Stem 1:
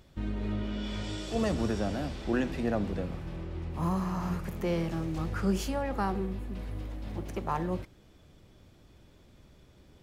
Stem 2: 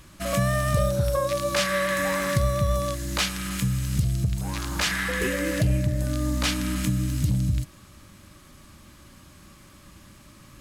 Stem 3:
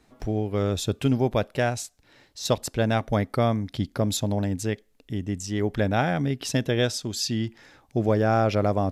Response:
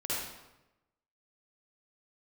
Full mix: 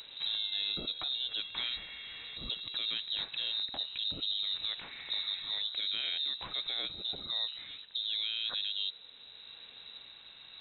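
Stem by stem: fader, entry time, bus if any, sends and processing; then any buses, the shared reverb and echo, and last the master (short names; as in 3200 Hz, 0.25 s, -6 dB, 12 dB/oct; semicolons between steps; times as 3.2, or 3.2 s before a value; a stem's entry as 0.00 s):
+1.5 dB, 0.00 s, bus A, no send, compressor 2.5:1, threshold -45 dBFS, peak gain reduction 14.5 dB; soft clip -36 dBFS, distortion -18 dB
-3.5 dB, 0.00 s, bus A, no send, auto duck -9 dB, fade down 1.90 s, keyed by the third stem
-1.5 dB, 0.00 s, no bus, no send, compressor 5:1, threshold -29 dBFS, peak gain reduction 11.5 dB; limiter -26.5 dBFS, peak gain reduction 7.5 dB
bus A: 0.0 dB, compressor 6:1, threshold -43 dBFS, peak gain reduction 17.5 dB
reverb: off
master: inverted band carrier 3900 Hz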